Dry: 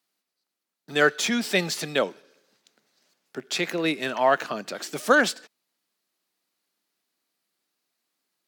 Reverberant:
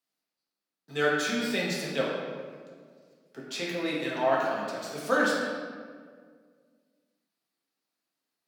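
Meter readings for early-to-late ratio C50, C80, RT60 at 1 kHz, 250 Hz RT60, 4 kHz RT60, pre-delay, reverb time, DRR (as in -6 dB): -0.5 dB, 1.5 dB, 1.7 s, 2.3 s, 1.1 s, 4 ms, 1.9 s, -5.0 dB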